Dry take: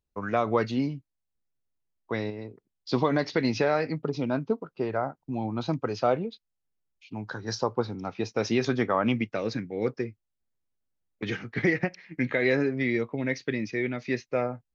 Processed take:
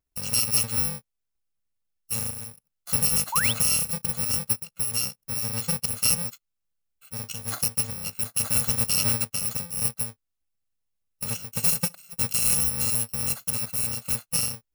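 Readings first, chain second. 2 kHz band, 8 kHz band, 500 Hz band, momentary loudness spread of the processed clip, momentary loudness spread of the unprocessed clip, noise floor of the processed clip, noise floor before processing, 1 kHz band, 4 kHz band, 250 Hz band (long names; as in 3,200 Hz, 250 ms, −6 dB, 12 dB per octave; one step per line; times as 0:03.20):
−4.0 dB, can't be measured, −15.0 dB, 10 LU, 10 LU, −81 dBFS, −82 dBFS, −7.0 dB, +10.0 dB, −10.0 dB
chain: samples in bit-reversed order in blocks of 128 samples
sound drawn into the spectrogram rise, 0:03.32–0:03.53, 840–3,800 Hz −29 dBFS
level +1.5 dB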